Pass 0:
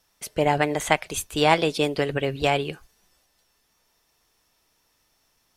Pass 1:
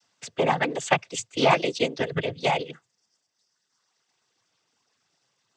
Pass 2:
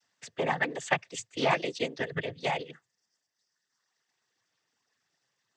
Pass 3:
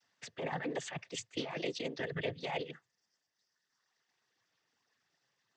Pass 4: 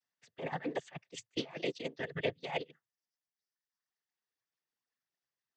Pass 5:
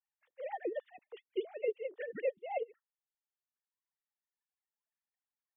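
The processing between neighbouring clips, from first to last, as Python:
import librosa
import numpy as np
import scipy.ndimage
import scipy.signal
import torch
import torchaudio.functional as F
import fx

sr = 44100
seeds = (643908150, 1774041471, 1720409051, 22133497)

y1 = fx.dereverb_blind(x, sr, rt60_s=1.5)
y1 = fx.noise_vocoder(y1, sr, seeds[0], bands=16)
y2 = fx.peak_eq(y1, sr, hz=1800.0, db=10.0, octaves=0.22)
y2 = F.gain(torch.from_numpy(y2), -7.0).numpy()
y3 = scipy.signal.sosfilt(scipy.signal.butter(2, 5900.0, 'lowpass', fs=sr, output='sos'), y2)
y3 = fx.over_compress(y3, sr, threshold_db=-33.0, ratio=-1.0)
y3 = F.gain(torch.from_numpy(y3), -4.0).numpy()
y4 = fx.upward_expand(y3, sr, threshold_db=-47.0, expansion=2.5)
y4 = F.gain(torch.from_numpy(y4), 5.0).numpy()
y5 = fx.sine_speech(y4, sr)
y5 = fx.high_shelf(y5, sr, hz=2500.0, db=-12.0)
y5 = F.gain(torch.from_numpy(y5), 1.0).numpy()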